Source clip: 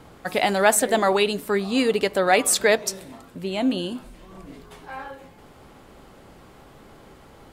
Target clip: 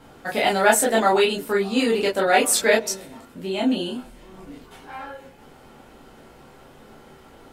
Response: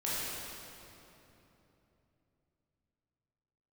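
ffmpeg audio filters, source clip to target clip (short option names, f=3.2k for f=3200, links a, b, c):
-filter_complex "[1:a]atrim=start_sample=2205,atrim=end_sample=3087,asetrate=70560,aresample=44100[a];[0:a][a]afir=irnorm=-1:irlink=0,volume=3.5dB"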